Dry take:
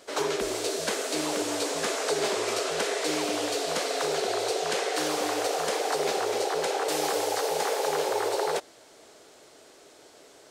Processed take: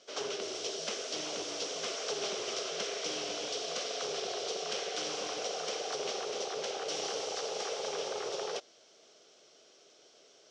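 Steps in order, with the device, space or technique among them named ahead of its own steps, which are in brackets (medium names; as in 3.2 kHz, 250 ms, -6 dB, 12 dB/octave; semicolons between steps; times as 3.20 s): full-range speaker at full volume (loudspeaker Doppler distortion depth 0.4 ms; cabinet simulation 170–6500 Hz, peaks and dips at 290 Hz -7 dB, 920 Hz -9 dB, 1.8 kHz -6 dB, 3.1 kHz +6 dB, 5.7 kHz +10 dB); trim -8 dB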